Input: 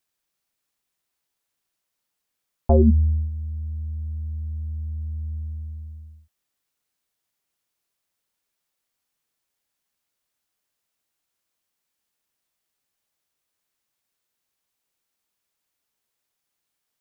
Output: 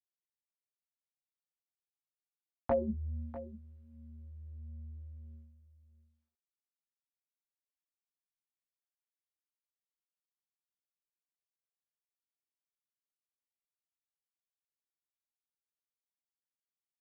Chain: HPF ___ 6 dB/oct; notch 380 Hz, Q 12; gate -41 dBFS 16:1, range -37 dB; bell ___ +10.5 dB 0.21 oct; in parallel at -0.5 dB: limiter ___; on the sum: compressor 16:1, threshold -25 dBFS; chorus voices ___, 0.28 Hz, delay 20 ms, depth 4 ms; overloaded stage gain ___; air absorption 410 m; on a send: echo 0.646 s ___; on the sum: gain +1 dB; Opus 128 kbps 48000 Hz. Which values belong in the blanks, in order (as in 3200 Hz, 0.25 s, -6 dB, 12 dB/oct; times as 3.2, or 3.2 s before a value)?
300 Hz, 560 Hz, -17 dBFS, 6, 21 dB, -15 dB